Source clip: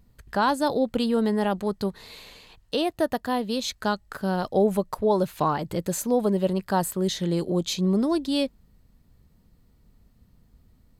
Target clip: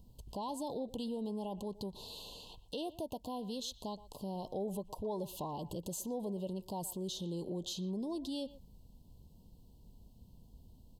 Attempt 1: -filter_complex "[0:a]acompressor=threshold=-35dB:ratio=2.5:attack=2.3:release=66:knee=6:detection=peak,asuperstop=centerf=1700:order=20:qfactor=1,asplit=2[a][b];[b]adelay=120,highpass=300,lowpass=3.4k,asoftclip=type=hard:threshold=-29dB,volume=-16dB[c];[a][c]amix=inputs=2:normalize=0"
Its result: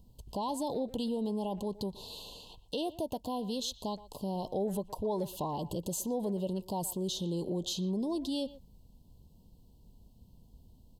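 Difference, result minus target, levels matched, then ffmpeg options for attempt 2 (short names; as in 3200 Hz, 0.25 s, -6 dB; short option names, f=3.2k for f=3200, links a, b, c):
compressor: peak gain reduction -5.5 dB
-filter_complex "[0:a]acompressor=threshold=-44dB:ratio=2.5:attack=2.3:release=66:knee=6:detection=peak,asuperstop=centerf=1700:order=20:qfactor=1,asplit=2[a][b];[b]adelay=120,highpass=300,lowpass=3.4k,asoftclip=type=hard:threshold=-29dB,volume=-16dB[c];[a][c]amix=inputs=2:normalize=0"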